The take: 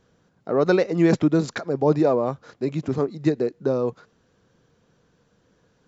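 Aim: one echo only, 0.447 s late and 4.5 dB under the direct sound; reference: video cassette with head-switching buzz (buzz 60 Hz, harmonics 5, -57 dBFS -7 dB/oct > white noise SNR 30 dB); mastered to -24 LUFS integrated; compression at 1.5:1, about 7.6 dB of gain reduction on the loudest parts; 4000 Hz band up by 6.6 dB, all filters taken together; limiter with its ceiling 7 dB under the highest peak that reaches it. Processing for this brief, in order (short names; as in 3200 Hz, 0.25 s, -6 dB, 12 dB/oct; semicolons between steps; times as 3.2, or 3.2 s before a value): bell 4000 Hz +7.5 dB; compressor 1.5:1, threshold -35 dBFS; limiter -20 dBFS; echo 0.447 s -4.5 dB; buzz 60 Hz, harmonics 5, -57 dBFS -7 dB/oct; white noise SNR 30 dB; gain +6.5 dB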